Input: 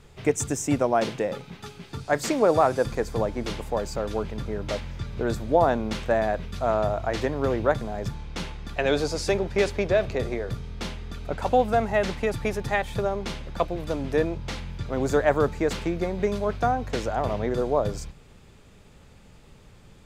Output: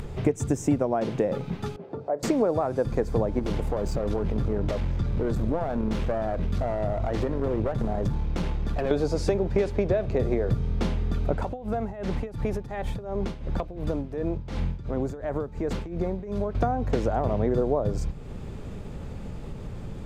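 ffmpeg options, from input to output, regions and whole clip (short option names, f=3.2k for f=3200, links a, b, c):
-filter_complex "[0:a]asettb=1/sr,asplit=3[a][b][c];[a]atrim=end=1.764[d];[b]atrim=start=1.76:end=2.23,asetpts=PTS-STARTPTS,afade=t=in:d=0.004:c=qsin,afade=t=out:st=0.466:d=0.004:c=qsin,acompressor=threshold=-25dB:ratio=3:attack=3.2:release=140:knee=1:detection=peak,bandpass=f=550:t=q:w=2.4[e];[c]atrim=start=2.226[f];[d][e]acrossfade=d=0.004:c1=hsin:c2=qsin[g];[g][f]acrossfade=d=0.004:c1=qsin:c2=hsin,asettb=1/sr,asplit=3[h][i][j];[h]atrim=end=3.394[k];[i]atrim=start=3.39:end=8.91,asetpts=PTS-STARTPTS,afade=t=in:d=0.004:c=qsin,afade=t=out:st=5.516:d=0.004:c=qsin,acompressor=threshold=-29dB:ratio=3:attack=3.2:release=140:knee=1:detection=peak,aeval=exprs='clip(val(0),-1,0.02)':c=same[l];[j]atrim=start=8.906[m];[k][l]acrossfade=d=0.004:c1=hsin:c2=qsin[n];[n][m]acrossfade=d=0.004:c1=qsin:c2=hsin,asettb=1/sr,asplit=3[o][p][q];[o]atrim=end=11.424[r];[p]atrim=start=11.42:end=16.55,asetpts=PTS-STARTPTS,afade=t=in:d=0.004:c=qsin,afade=t=out:st=5.126:d=0.004:c=qsin,acompressor=threshold=-30dB:ratio=8:attack=3.2:release=140:knee=1:detection=peak,tremolo=f=2.8:d=0.83[s];[q]atrim=start=16.546[t];[r][s]acrossfade=d=0.004:c1=hsin:c2=qsin[u];[u][t]acrossfade=d=0.004:c1=qsin:c2=hsin,acompressor=threshold=-29dB:ratio=6,tiltshelf=f=1.1k:g=7,acompressor=mode=upward:threshold=-31dB:ratio=2.5,volume=3.5dB"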